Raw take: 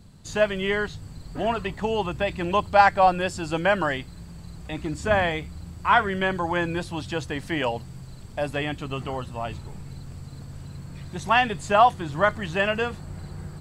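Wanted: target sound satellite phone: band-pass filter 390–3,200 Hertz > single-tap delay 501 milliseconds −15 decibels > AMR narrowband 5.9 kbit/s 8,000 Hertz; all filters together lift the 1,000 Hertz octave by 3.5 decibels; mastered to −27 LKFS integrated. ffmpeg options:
ffmpeg -i in.wav -af "highpass=390,lowpass=3200,equalizer=frequency=1000:width_type=o:gain=5,aecho=1:1:501:0.178,volume=-3.5dB" -ar 8000 -c:a libopencore_amrnb -b:a 5900 out.amr

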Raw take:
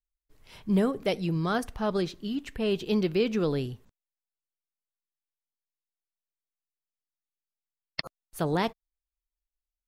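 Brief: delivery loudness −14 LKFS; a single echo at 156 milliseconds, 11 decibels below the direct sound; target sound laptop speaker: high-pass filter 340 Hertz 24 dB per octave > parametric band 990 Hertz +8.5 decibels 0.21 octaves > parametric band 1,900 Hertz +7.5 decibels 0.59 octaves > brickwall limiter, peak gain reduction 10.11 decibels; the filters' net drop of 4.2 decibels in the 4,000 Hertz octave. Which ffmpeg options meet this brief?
ffmpeg -i in.wav -af "highpass=frequency=340:width=0.5412,highpass=frequency=340:width=1.3066,equalizer=frequency=990:width_type=o:width=0.21:gain=8.5,equalizer=frequency=1900:width_type=o:width=0.59:gain=7.5,equalizer=frequency=4000:width_type=o:gain=-7,aecho=1:1:156:0.282,volume=20dB,alimiter=limit=-2dB:level=0:latency=1" out.wav

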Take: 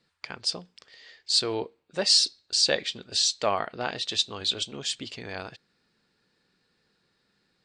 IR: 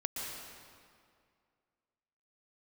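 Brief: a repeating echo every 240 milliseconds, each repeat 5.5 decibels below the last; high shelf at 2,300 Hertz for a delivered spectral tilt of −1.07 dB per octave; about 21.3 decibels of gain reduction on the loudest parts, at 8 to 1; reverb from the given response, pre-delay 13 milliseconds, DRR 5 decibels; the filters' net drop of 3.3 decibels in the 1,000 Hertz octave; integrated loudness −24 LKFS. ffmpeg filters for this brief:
-filter_complex "[0:a]equalizer=frequency=1000:width_type=o:gain=-6,highshelf=frequency=2300:gain=7.5,acompressor=threshold=-33dB:ratio=8,aecho=1:1:240|480|720|960|1200|1440|1680:0.531|0.281|0.149|0.079|0.0419|0.0222|0.0118,asplit=2[link_01][link_02];[1:a]atrim=start_sample=2205,adelay=13[link_03];[link_02][link_03]afir=irnorm=-1:irlink=0,volume=-8dB[link_04];[link_01][link_04]amix=inputs=2:normalize=0,volume=10dB"

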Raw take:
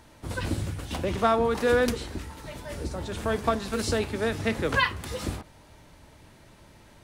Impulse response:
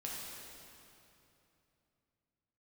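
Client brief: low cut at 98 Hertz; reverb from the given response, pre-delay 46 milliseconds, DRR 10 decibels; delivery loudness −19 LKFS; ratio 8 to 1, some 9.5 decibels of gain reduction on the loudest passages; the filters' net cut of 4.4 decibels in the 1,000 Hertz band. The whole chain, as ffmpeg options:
-filter_complex "[0:a]highpass=98,equalizer=frequency=1000:width_type=o:gain=-6,acompressor=threshold=-30dB:ratio=8,asplit=2[link_01][link_02];[1:a]atrim=start_sample=2205,adelay=46[link_03];[link_02][link_03]afir=irnorm=-1:irlink=0,volume=-10.5dB[link_04];[link_01][link_04]amix=inputs=2:normalize=0,volume=16.5dB"

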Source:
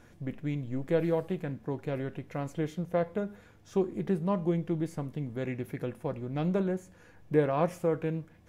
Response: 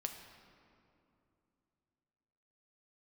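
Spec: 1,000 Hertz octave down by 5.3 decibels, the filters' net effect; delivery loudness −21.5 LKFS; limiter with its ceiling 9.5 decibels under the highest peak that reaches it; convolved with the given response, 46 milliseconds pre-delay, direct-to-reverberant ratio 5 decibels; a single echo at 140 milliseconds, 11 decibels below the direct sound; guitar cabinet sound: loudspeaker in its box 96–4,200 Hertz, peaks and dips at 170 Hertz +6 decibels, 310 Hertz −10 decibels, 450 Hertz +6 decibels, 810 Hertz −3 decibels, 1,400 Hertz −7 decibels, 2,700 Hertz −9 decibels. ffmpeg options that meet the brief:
-filter_complex "[0:a]equalizer=frequency=1000:width_type=o:gain=-4.5,alimiter=limit=-24dB:level=0:latency=1,aecho=1:1:140:0.282,asplit=2[link_01][link_02];[1:a]atrim=start_sample=2205,adelay=46[link_03];[link_02][link_03]afir=irnorm=-1:irlink=0,volume=-4dB[link_04];[link_01][link_04]amix=inputs=2:normalize=0,highpass=96,equalizer=frequency=170:width_type=q:width=4:gain=6,equalizer=frequency=310:width_type=q:width=4:gain=-10,equalizer=frequency=450:width_type=q:width=4:gain=6,equalizer=frequency=810:width_type=q:width=4:gain=-3,equalizer=frequency=1400:width_type=q:width=4:gain=-7,equalizer=frequency=2700:width_type=q:width=4:gain=-9,lowpass=frequency=4200:width=0.5412,lowpass=frequency=4200:width=1.3066,volume=10.5dB"

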